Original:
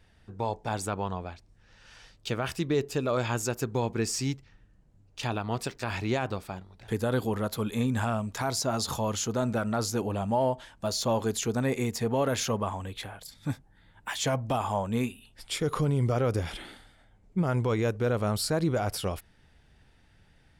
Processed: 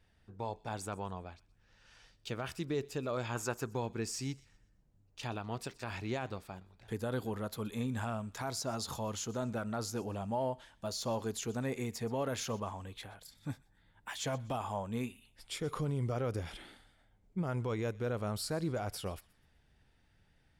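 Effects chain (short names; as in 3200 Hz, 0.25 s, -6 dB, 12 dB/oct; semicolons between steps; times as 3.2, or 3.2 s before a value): 3.35–3.81 bell 1100 Hz +13.5 dB -> +2 dB 1.5 oct; thin delay 0.124 s, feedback 35%, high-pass 1600 Hz, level -20.5 dB; gain -8.5 dB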